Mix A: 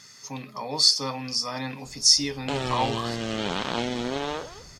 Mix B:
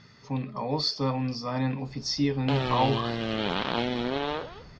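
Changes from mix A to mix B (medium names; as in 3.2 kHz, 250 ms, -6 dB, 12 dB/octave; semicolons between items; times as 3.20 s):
speech: add tilt EQ -3 dB/octave; master: add low-pass 4.6 kHz 24 dB/octave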